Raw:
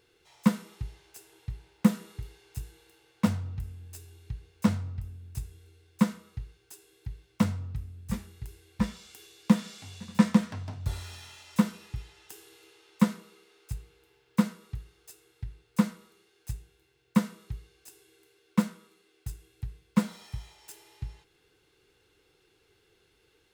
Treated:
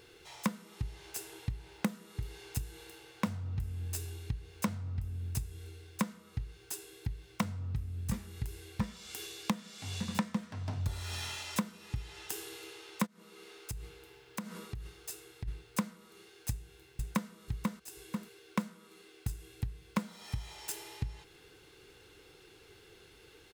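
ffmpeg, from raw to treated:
-filter_complex "[0:a]asplit=3[a][b][c];[a]afade=t=out:st=13.05:d=0.02[d];[b]acompressor=threshold=-44dB:ratio=12:attack=3.2:release=140:knee=1:detection=peak,afade=t=in:st=13.05:d=0.02,afade=t=out:st=15.47:d=0.02[e];[c]afade=t=in:st=15.47:d=0.02[f];[d][e][f]amix=inputs=3:normalize=0,asplit=2[g][h];[h]afade=t=in:st=16.5:d=0.01,afade=t=out:st=17.3:d=0.01,aecho=0:1:490|980|1470:0.562341|0.112468|0.0224937[i];[g][i]amix=inputs=2:normalize=0,acompressor=threshold=-41dB:ratio=6,volume=9dB"

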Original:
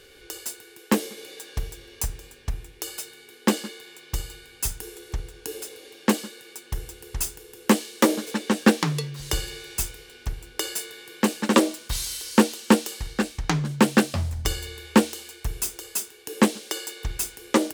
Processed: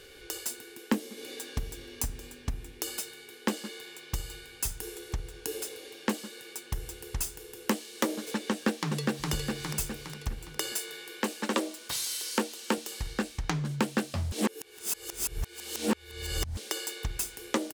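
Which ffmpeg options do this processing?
-filter_complex "[0:a]asettb=1/sr,asplit=3[a][b][c];[a]atrim=end=0.504[d];[b]atrim=start=0.5:end=3.02,asetpts=PTS-STARTPTS,afade=t=in:d=0.004:c=qsin,afade=t=out:st=2.516:d=0.004:c=qsin,equalizer=f=250:t=o:w=0.47:g=11.5[e];[c]atrim=start=3.016[f];[d][e]acrossfade=d=0.004:c1=hsin:c2=qsin[g];[g][f]acrossfade=d=0.004:c1=qsin:c2=hsin,asplit=2[h][i];[i]afade=t=in:st=8.5:d=0.01,afade=t=out:st=9.31:d=0.01,aecho=0:1:410|820|1230|1640|2050:0.630957|0.252383|0.100953|0.0403813|0.0161525[j];[h][j]amix=inputs=2:normalize=0,asettb=1/sr,asplit=3[k][l][m];[k]atrim=end=10.724[n];[l]atrim=start=10.72:end=12.78,asetpts=PTS-STARTPTS,afade=t=in:d=0.004:c=qsin,afade=t=out:st=2.056:d=0.004:c=qsin,highpass=250[o];[m]atrim=start=12.776[p];[n][o]acrossfade=d=0.004:c1=hsin:c2=qsin[q];[q][p]acrossfade=d=0.004:c1=qsin:c2=hsin,asplit=3[r][s][t];[r]atrim=end=14.322[u];[s]atrim=start=14.318:end=16.572,asetpts=PTS-STARTPTS,areverse[v];[t]atrim=start=16.568[w];[u][v]acrossfade=d=0.004:c1=hsin:c2=hsin[x];[x][w]acrossfade=d=0.004:c1=hsin:c2=hsin,acompressor=threshold=-30dB:ratio=2.5"

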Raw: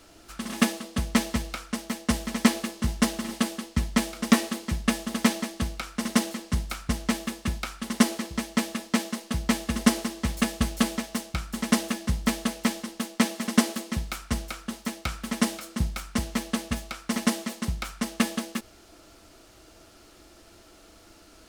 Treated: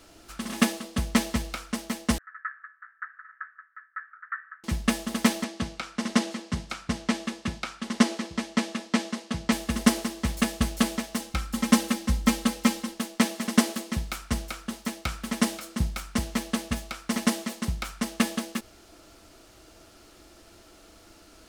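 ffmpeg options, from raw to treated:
-filter_complex "[0:a]asettb=1/sr,asplit=3[a][b][c];[a]atrim=end=2.184[d];[b]atrim=start=2.18:end=4.64,asetpts=PTS-STARTPTS,afade=t=in:d=0.004:c=qsin,afade=t=out:st=2.456:d=0.004:c=qsin,asuperpass=centerf=1500:order=8:qfactor=2.7[e];[c]atrim=start=4.636[f];[d][e]acrossfade=d=0.004:c1=hsin:c2=qsin[g];[g][f]acrossfade=d=0.004:c1=qsin:c2=hsin,asettb=1/sr,asplit=3[h][i][j];[h]atrim=end=5.444[k];[i]atrim=start=5.44:end=9.52,asetpts=PTS-STARTPTS,afade=t=in:d=0.004:c=qsin,afade=t=out:st=4.076:d=0.004:c=qsin,highpass=100,lowpass=6.9k[l];[j]atrim=start=9.516[m];[k][l]acrossfade=d=0.004:c1=hsin:c2=qsin[n];[n][m]acrossfade=d=0.004:c1=qsin:c2=hsin,asettb=1/sr,asplit=3[o][p][q];[o]atrim=end=11.204[r];[p]atrim=start=11.2:end=12.94,asetpts=PTS-STARTPTS,afade=t=in:d=0.004:c=qsin,afade=t=out:st=1.736:d=0.004:c=qsin,aecho=1:1:3.8:0.65,atrim=end_sample=76734[s];[q]atrim=start=12.936[t];[r][s]acrossfade=d=0.004:c1=hsin:c2=qsin[u];[u][t]acrossfade=d=0.004:c1=qsin:c2=hsin"

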